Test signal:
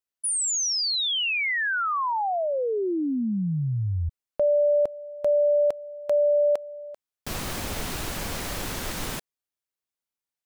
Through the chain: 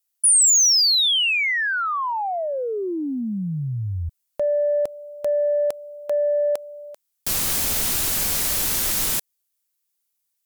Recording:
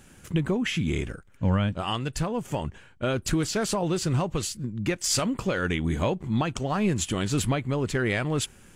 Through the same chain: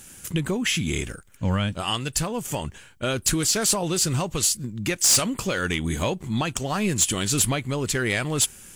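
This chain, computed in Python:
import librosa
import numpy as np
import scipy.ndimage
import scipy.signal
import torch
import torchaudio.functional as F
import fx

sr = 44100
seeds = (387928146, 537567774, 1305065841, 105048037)

y = F.preemphasis(torch.from_numpy(x), 0.8).numpy()
y = fx.fold_sine(y, sr, drive_db=8, ceiling_db=-15.0)
y = y * librosa.db_to_amplitude(2.0)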